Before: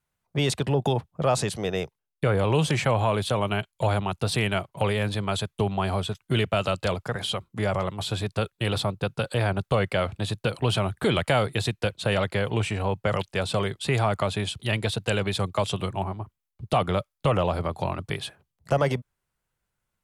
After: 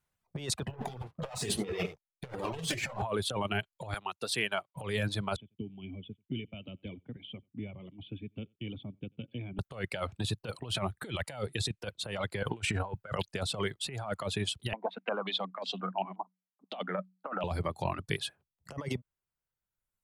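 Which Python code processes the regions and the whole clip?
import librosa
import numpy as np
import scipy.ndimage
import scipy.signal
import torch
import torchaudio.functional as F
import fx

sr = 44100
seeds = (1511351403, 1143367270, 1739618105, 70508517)

y = fx.chain(x, sr, fx.leveller(passes=3),
    fx.echo_single(ms=72, db=-8.5),
    fx.detune_double(cents=26), at=(0.68, 3.02))
y = fx.chain(y, sr, fx.highpass(hz=480.0, slope=6),
    fx.upward_expand(threshold_db=-43.0, expansion=1.5), at=(3.94, 4.76))
y = fx.chain(y, sr, fx.formant_cascade(vowel='i'),
    fx.echo_single(ms=89, db=-23.0),
    fx.band_squash(depth_pct=40), at=(5.36, 9.59))
y = fx.chain(y, sr, fx.notch(hz=1100.0, q=5.9),
    fx.resample_bad(factor=2, down='none', up='filtered'), at=(11.33, 11.81))
y = fx.chain(y, sr, fx.peak_eq(hz=1500.0, db=8.0, octaves=0.26),
    fx.over_compress(threshold_db=-29.0, ratio=-0.5), at=(12.43, 13.19))
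y = fx.chain(y, sr, fx.cheby_ripple_highpass(hz=180.0, ripple_db=9),
    fx.filter_held_lowpass(hz=5.6, low_hz=930.0, high_hz=4300.0), at=(14.73, 17.44))
y = fx.dereverb_blind(y, sr, rt60_s=1.5)
y = fx.over_compress(y, sr, threshold_db=-28.0, ratio=-0.5)
y = y * librosa.db_to_amplitude(-5.0)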